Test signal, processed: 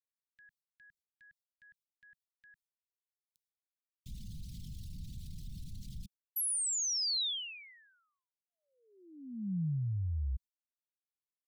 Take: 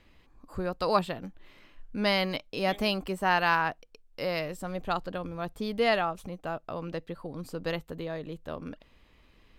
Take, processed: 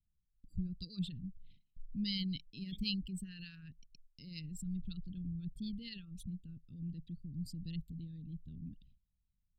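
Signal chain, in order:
spectral envelope exaggerated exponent 2
noise gate with hold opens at −46 dBFS
Chebyshev band-stop filter 180–3,700 Hz, order 3

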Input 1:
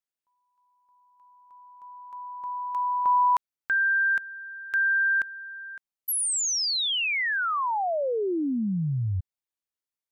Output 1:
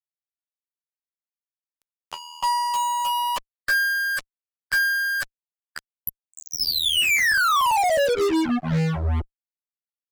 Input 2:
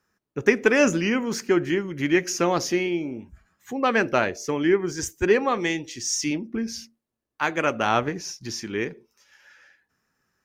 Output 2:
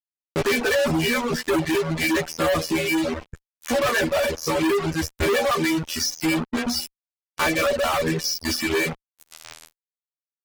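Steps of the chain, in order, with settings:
in parallel at +2 dB: downward compressor 16 to 1, threshold −30 dBFS
on the sum: phases set to zero 80.3 Hz
treble cut that deepens with the level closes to 2,200 Hz, closed at −22 dBFS
mains-hum notches 60/120/180/240/300/360/420/480 Hz
tuned comb filter 580 Hz, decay 0.2 s, harmonics all, mix 90%
fuzz pedal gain 58 dB, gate −52 dBFS
reverb reduction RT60 1.4 s
level −4.5 dB

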